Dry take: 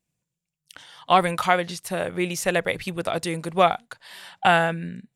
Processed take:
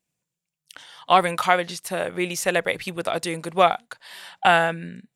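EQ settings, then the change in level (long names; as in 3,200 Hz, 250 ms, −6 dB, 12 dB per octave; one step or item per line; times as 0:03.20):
low-shelf EQ 150 Hz −11 dB
+1.5 dB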